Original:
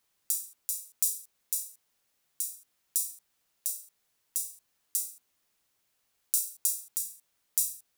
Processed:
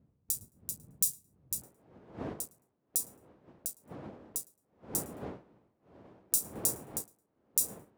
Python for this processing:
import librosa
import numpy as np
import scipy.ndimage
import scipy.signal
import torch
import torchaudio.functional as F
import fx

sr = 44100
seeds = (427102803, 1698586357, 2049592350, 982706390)

y = fx.wiener(x, sr, points=25)
y = fx.dmg_wind(y, sr, seeds[0], corner_hz=fx.steps((0.0, 140.0), (1.61, 460.0)), level_db=-42.0)
y = scipy.signal.sosfilt(scipy.signal.butter(2, 92.0, 'highpass', fs=sr, output='sos'), y)
y = fx.echo_feedback(y, sr, ms=109, feedback_pct=19, wet_db=-18)
y = fx.upward_expand(y, sr, threshold_db=-49.0, expansion=1.5)